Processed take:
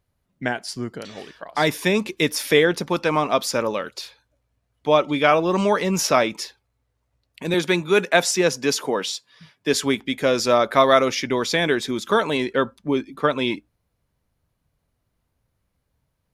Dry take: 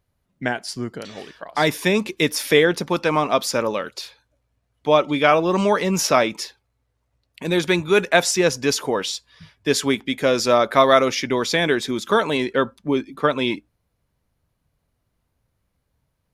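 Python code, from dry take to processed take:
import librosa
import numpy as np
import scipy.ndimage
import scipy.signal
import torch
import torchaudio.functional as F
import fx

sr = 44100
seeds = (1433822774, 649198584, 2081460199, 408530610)

y = fx.highpass(x, sr, hz=140.0, slope=24, at=(7.54, 9.74))
y = y * librosa.db_to_amplitude(-1.0)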